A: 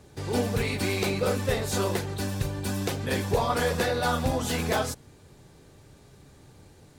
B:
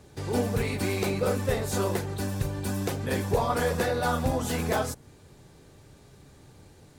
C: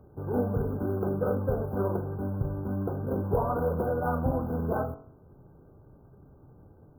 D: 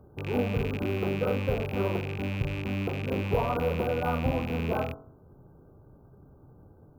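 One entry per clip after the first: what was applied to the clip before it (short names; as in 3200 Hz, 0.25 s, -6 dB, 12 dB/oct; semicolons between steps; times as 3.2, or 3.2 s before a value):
dynamic EQ 3600 Hz, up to -5 dB, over -46 dBFS, Q 0.75
median filter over 25 samples; de-hum 46.47 Hz, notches 32; FFT band-reject 1600–11000 Hz
rattling part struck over -33 dBFS, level -27 dBFS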